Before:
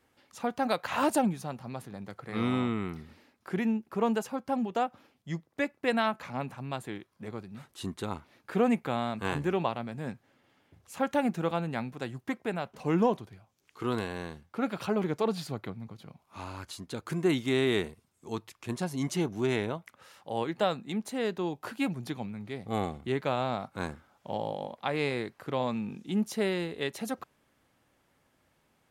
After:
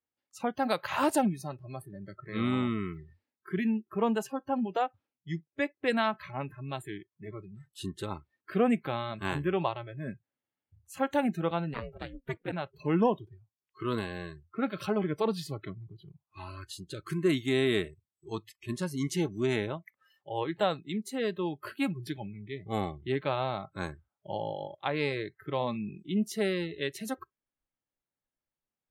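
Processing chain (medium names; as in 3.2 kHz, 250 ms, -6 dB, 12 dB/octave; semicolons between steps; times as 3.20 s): spectral noise reduction 27 dB; 11.73–12.51 s: ring modulator 400 Hz -> 81 Hz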